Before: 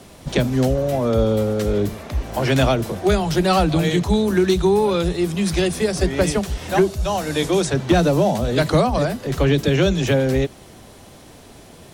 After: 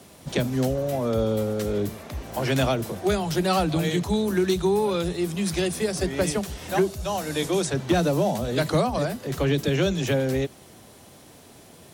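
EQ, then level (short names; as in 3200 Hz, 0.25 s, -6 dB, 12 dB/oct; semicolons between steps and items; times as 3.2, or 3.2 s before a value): HPF 78 Hz; high shelf 9400 Hz +7.5 dB; -5.5 dB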